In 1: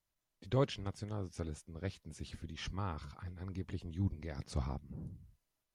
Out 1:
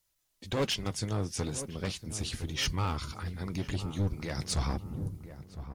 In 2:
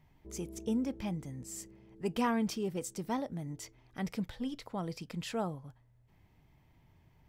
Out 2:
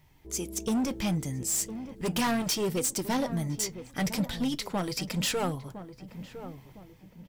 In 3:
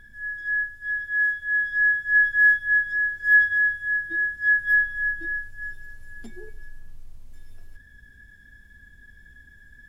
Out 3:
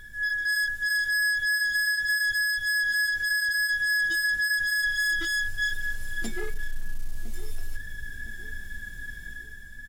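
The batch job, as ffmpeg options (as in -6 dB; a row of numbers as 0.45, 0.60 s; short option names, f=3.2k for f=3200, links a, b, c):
-filter_complex "[0:a]highshelf=f=2.8k:g=11,dynaudnorm=f=110:g=11:m=6dB,alimiter=limit=-12.5dB:level=0:latency=1:release=165,acontrast=77,asoftclip=type=hard:threshold=-20.5dB,flanger=delay=2.1:depth=4.6:regen=-65:speed=0.38:shape=sinusoidal,asplit=2[a][b];[b]adelay=1009,lowpass=f=930:p=1,volume=-11dB,asplit=2[c][d];[d]adelay=1009,lowpass=f=930:p=1,volume=0.44,asplit=2[e][f];[f]adelay=1009,lowpass=f=930:p=1,volume=0.44,asplit=2[g][h];[h]adelay=1009,lowpass=f=930:p=1,volume=0.44,asplit=2[i][j];[j]adelay=1009,lowpass=f=930:p=1,volume=0.44[k];[c][e][g][i][k]amix=inputs=5:normalize=0[l];[a][l]amix=inputs=2:normalize=0"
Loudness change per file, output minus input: +7.0, +7.5, -3.5 LU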